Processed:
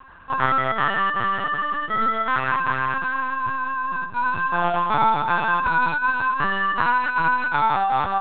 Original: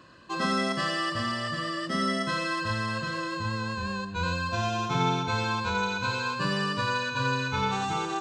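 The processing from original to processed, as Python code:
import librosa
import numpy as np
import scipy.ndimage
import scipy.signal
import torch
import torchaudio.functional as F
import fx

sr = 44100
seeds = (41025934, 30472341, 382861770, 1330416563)

y = fx.band_shelf(x, sr, hz=1100.0, db=10.5, octaves=1.7)
y = fx.lpc_vocoder(y, sr, seeds[0], excitation='pitch_kept', order=10)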